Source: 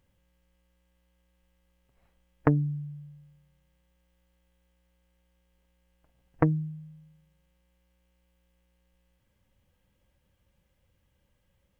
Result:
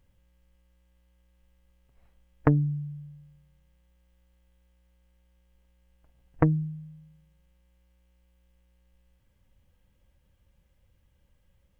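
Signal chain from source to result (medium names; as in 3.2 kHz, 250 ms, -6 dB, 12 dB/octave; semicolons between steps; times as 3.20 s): bass shelf 78 Hz +10 dB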